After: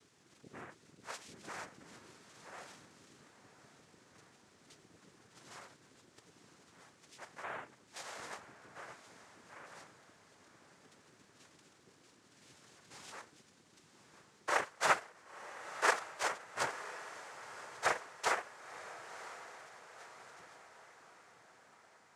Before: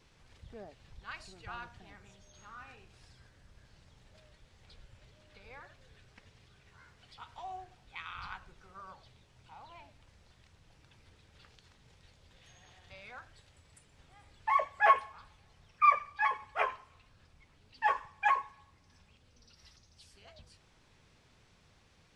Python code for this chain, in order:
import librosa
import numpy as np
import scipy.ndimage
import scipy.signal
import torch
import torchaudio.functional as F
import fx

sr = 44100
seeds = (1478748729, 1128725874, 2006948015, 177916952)

y = fx.rider(x, sr, range_db=4, speed_s=2.0)
y = fx.noise_vocoder(y, sr, seeds[0], bands=3)
y = fx.echo_diffused(y, sr, ms=1003, feedback_pct=53, wet_db=-13)
y = y * 10.0 ** (-5.0 / 20.0)